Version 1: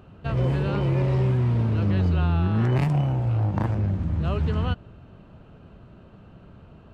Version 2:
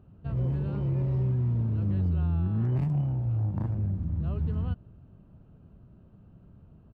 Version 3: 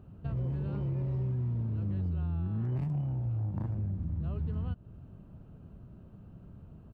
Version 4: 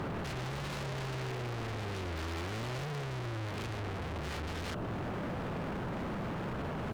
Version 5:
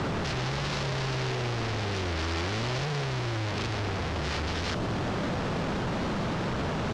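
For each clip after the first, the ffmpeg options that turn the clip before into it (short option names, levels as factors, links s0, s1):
-af "firequalizer=gain_entry='entry(140,0);entry(460,-8);entry(2100,-15)':delay=0.05:min_phase=1,volume=0.596"
-af "acompressor=threshold=0.0141:ratio=2.5,volume=1.41"
-filter_complex "[0:a]asplit=2[s0][s1];[s1]highpass=f=720:p=1,volume=89.1,asoftclip=type=tanh:threshold=0.0562[s2];[s0][s2]amix=inputs=2:normalize=0,lowpass=f=2100:p=1,volume=0.501,aeval=exprs='0.0168*(abs(mod(val(0)/0.0168+3,4)-2)-1)':c=same,volume=1.33"
-filter_complex "[0:a]acrossover=split=500[s0][s1];[s0]acrusher=bits=7:mix=0:aa=0.000001[s2];[s2][s1]amix=inputs=2:normalize=0,lowpass=f=5400:t=q:w=1.6,volume=2.24"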